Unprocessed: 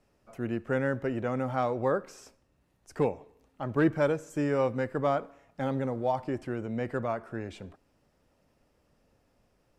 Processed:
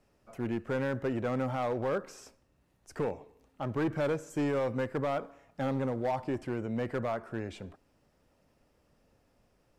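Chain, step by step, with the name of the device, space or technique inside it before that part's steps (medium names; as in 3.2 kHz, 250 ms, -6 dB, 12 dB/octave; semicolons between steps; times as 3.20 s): limiter into clipper (peak limiter -20 dBFS, peak gain reduction 5 dB; hard clipper -25.5 dBFS, distortion -15 dB)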